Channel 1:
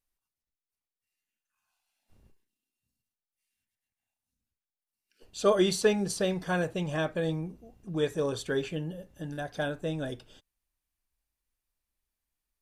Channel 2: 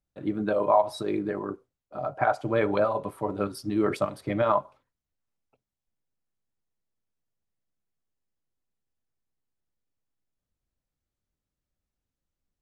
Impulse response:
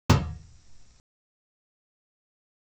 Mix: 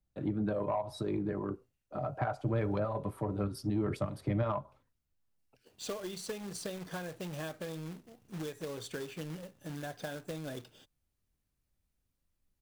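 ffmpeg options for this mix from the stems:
-filter_complex "[0:a]highpass=f=92:w=0.5412,highpass=f=92:w=1.3066,acompressor=threshold=0.0224:ratio=16,acrusher=bits=2:mode=log:mix=0:aa=0.000001,adelay=450,volume=0.668[s0];[1:a]lowshelf=f=280:g=8.5,acrossover=split=150[s1][s2];[s2]acompressor=threshold=0.0224:ratio=2.5[s3];[s1][s3]amix=inputs=2:normalize=0,asoftclip=type=tanh:threshold=0.106,volume=0.794[s4];[s0][s4]amix=inputs=2:normalize=0"

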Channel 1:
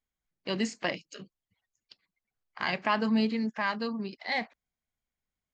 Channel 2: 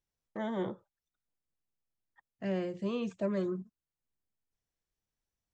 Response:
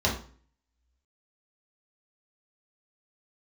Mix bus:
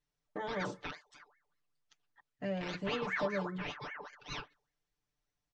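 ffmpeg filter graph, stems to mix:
-filter_complex "[0:a]bandreject=f=97.66:t=h:w=4,bandreject=f=195.32:t=h:w=4,aeval=exprs='val(0)*sin(2*PI*1300*n/s+1300*0.55/5.1*sin(2*PI*5.1*n/s))':c=same,volume=0.251[s0];[1:a]acompressor=threshold=0.0112:ratio=2,volume=1[s1];[s0][s1]amix=inputs=2:normalize=0,lowpass=6400,aecho=1:1:6.8:1"

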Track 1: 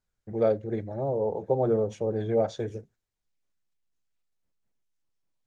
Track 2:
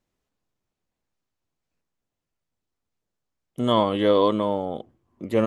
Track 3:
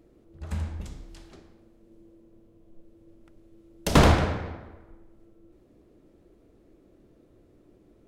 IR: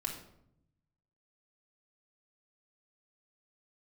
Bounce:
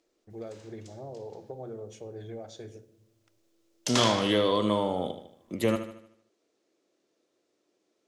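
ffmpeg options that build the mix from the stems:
-filter_complex "[0:a]acompressor=threshold=0.0501:ratio=6,volume=0.178,asplit=3[s0][s1][s2];[s1]volume=0.631[s3];[1:a]acrossover=split=200[s4][s5];[s5]acompressor=threshold=0.0794:ratio=6[s6];[s4][s6]amix=inputs=2:normalize=0,adelay=300,volume=0.841,asplit=2[s7][s8];[s8]volume=0.316[s9];[2:a]highpass=430,lowpass=f=6200:t=q:w=1.7,volume=0.266[s10];[s2]apad=whole_len=356295[s11];[s10][s11]sidechaincompress=threshold=0.00398:ratio=8:attack=16:release=445[s12];[3:a]atrim=start_sample=2205[s13];[s3][s13]afir=irnorm=-1:irlink=0[s14];[s9]aecho=0:1:76|152|228|304|380|456|532:1|0.47|0.221|0.104|0.0488|0.0229|0.0108[s15];[s0][s7][s12][s14][s15]amix=inputs=5:normalize=0,highshelf=f=2500:g=12"

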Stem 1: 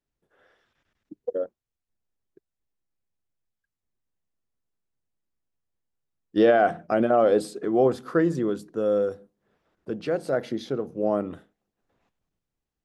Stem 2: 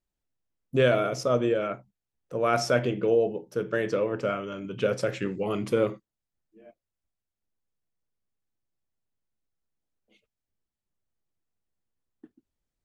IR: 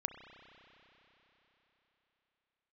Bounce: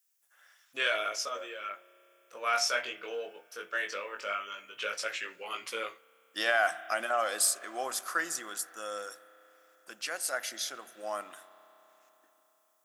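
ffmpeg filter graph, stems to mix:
-filter_complex "[0:a]equalizer=f=440:t=o:w=0.34:g=-12.5,aexciter=amount=2.4:drive=9.1:freq=5500,volume=1.26,asplit=3[s0][s1][s2];[s1]volume=0.501[s3];[1:a]acontrast=26,flanger=delay=17.5:depth=3.9:speed=0.17,volume=1.06,asplit=2[s4][s5];[s5]volume=0.158[s6];[s2]apad=whole_len=566611[s7];[s4][s7]sidechaincompress=threshold=0.0282:ratio=8:attack=5.1:release=1290[s8];[2:a]atrim=start_sample=2205[s9];[s3][s6]amix=inputs=2:normalize=0[s10];[s10][s9]afir=irnorm=-1:irlink=0[s11];[s0][s8][s11]amix=inputs=3:normalize=0,highpass=1500"

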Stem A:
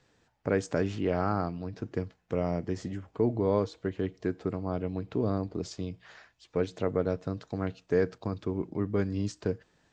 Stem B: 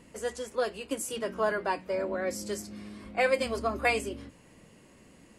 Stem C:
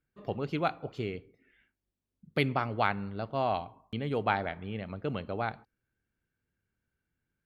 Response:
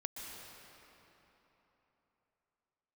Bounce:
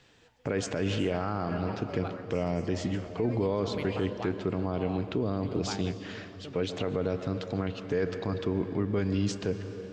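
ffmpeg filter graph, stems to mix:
-filter_complex "[0:a]equalizer=f=3000:t=o:w=0.87:g=8,volume=1.33,asplit=3[s0][s1][s2];[s1]volume=0.447[s3];[1:a]lowpass=f=6100:w=0.5412,lowpass=f=6100:w=1.3066,alimiter=level_in=1.19:limit=0.0631:level=0:latency=1:release=66,volume=0.841,volume=0.316,asplit=2[s4][s5];[s5]volume=0.0841[s6];[2:a]adelay=1400,volume=0.266[s7];[s2]apad=whole_len=237664[s8];[s4][s8]sidechaingate=range=0.0224:threshold=0.00355:ratio=16:detection=peak[s9];[3:a]atrim=start_sample=2205[s10];[s3][s6]amix=inputs=2:normalize=0[s11];[s11][s10]afir=irnorm=-1:irlink=0[s12];[s0][s9][s7][s12]amix=inputs=4:normalize=0,alimiter=limit=0.112:level=0:latency=1:release=45"

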